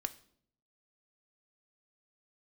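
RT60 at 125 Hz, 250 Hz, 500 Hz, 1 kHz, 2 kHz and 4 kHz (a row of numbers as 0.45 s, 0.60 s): 0.95 s, 0.85 s, 0.70 s, 0.55 s, 0.50 s, 0.50 s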